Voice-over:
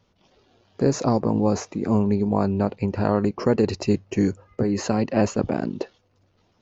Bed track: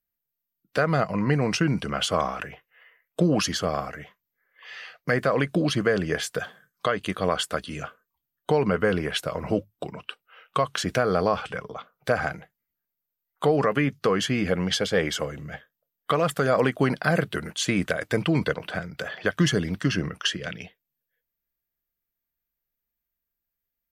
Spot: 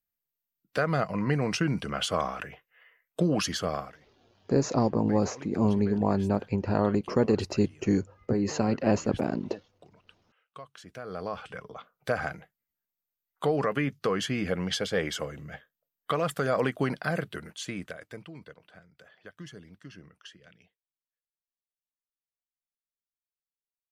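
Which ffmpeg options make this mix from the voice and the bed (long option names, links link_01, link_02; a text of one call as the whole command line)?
ffmpeg -i stem1.wav -i stem2.wav -filter_complex "[0:a]adelay=3700,volume=-4dB[link_01];[1:a]volume=12.5dB,afade=type=out:start_time=3.74:duration=0.24:silence=0.133352,afade=type=in:start_time=10.92:duration=1:silence=0.149624,afade=type=out:start_time=16.72:duration=1.59:silence=0.125893[link_02];[link_01][link_02]amix=inputs=2:normalize=0" out.wav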